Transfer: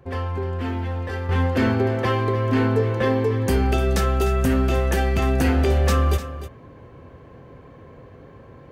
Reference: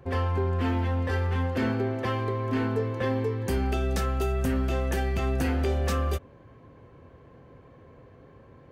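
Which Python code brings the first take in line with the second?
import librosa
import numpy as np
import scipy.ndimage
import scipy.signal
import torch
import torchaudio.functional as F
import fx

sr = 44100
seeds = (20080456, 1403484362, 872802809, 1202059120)

y = fx.fix_echo_inverse(x, sr, delay_ms=301, level_db=-13.0)
y = fx.gain(y, sr, db=fx.steps((0.0, 0.0), (1.29, -7.0)))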